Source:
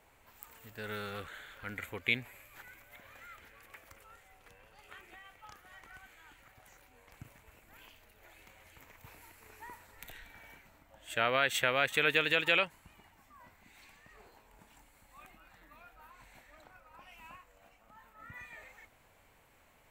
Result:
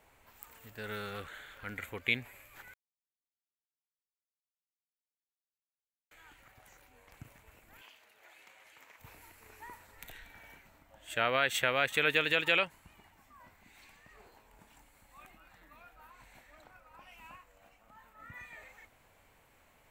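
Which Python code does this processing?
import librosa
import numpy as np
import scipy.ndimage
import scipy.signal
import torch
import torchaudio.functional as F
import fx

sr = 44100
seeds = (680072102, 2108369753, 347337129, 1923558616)

y = fx.weighting(x, sr, curve='A', at=(7.81, 9.0))
y = fx.edit(y, sr, fx.silence(start_s=2.74, length_s=3.37), tone=tone)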